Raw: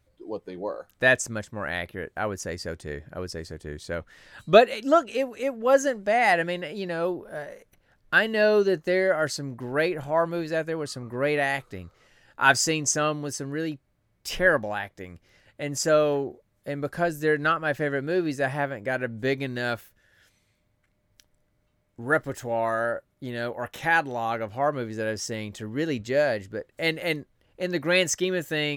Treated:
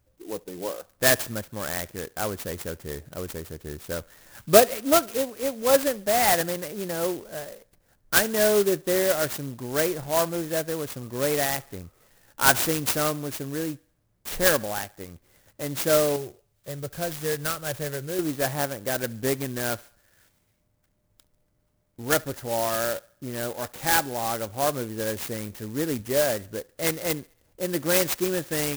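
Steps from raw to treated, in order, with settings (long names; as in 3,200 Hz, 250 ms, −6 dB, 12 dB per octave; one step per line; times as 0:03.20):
0:16.16–0:18.19: octave-band graphic EQ 125/250/1,000/2,000/4,000/8,000 Hz +4/−12/−9/−4/+6/+10 dB
feedback echo with a high-pass in the loop 70 ms, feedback 50%, high-pass 420 Hz, level −23.5 dB
converter with an unsteady clock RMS 0.097 ms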